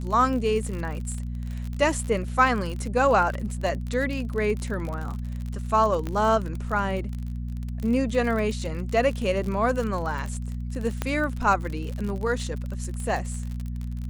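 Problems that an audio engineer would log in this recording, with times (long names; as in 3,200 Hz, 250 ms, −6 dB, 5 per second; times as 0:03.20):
surface crackle 45 per second −30 dBFS
mains hum 60 Hz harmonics 4 −31 dBFS
0:06.07: click −18 dBFS
0:11.02: click −12 dBFS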